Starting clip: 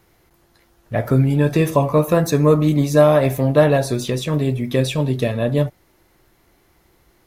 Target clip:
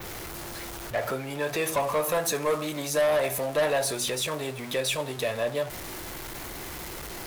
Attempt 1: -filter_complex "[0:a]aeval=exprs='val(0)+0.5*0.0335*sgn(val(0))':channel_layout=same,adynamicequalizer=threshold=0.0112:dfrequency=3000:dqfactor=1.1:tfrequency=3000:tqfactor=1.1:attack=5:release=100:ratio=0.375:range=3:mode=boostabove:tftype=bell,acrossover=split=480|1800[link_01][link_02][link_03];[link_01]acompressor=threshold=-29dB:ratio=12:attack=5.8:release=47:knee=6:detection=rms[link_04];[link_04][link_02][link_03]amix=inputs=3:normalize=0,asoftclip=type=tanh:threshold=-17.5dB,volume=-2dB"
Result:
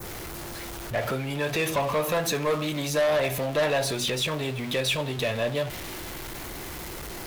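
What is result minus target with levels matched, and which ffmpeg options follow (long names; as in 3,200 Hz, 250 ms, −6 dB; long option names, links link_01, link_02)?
downward compressor: peak gain reduction −8 dB; 4,000 Hz band +2.0 dB
-filter_complex "[0:a]aeval=exprs='val(0)+0.5*0.0335*sgn(val(0))':channel_layout=same,adynamicequalizer=threshold=0.0112:dfrequency=9900:dqfactor=1.1:tfrequency=9900:tqfactor=1.1:attack=5:release=100:ratio=0.375:range=3:mode=boostabove:tftype=bell,acrossover=split=480|1800[link_01][link_02][link_03];[link_01]acompressor=threshold=-37.5dB:ratio=12:attack=5.8:release=47:knee=6:detection=rms[link_04];[link_04][link_02][link_03]amix=inputs=3:normalize=0,asoftclip=type=tanh:threshold=-17.5dB,volume=-2dB"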